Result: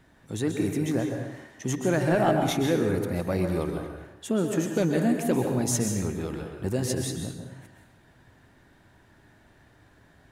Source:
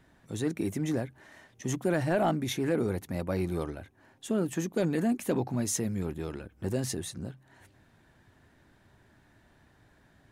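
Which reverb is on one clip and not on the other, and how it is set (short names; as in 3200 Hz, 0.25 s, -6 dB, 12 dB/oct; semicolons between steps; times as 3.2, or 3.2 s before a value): plate-style reverb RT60 0.93 s, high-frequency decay 0.8×, pre-delay 0.115 s, DRR 3.5 dB; gain +3 dB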